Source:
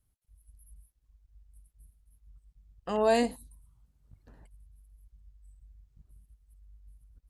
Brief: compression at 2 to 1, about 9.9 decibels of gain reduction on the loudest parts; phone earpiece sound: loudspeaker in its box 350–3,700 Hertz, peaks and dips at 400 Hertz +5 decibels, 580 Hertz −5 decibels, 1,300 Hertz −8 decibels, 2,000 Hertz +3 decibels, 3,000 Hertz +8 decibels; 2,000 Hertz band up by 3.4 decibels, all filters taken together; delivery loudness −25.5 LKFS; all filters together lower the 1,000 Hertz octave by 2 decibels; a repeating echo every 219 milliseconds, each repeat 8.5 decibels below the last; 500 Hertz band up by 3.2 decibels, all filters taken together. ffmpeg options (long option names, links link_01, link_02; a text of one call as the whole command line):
ffmpeg -i in.wav -af "equalizer=frequency=500:width_type=o:gain=6.5,equalizer=frequency=1000:width_type=o:gain=-5.5,equalizer=frequency=2000:width_type=o:gain=3.5,acompressor=threshold=-36dB:ratio=2,highpass=350,equalizer=frequency=400:width_type=q:width=4:gain=5,equalizer=frequency=580:width_type=q:width=4:gain=-5,equalizer=frequency=1300:width_type=q:width=4:gain=-8,equalizer=frequency=2000:width_type=q:width=4:gain=3,equalizer=frequency=3000:width_type=q:width=4:gain=8,lowpass=frequency=3700:width=0.5412,lowpass=frequency=3700:width=1.3066,aecho=1:1:219|438|657|876:0.376|0.143|0.0543|0.0206,volume=10.5dB" out.wav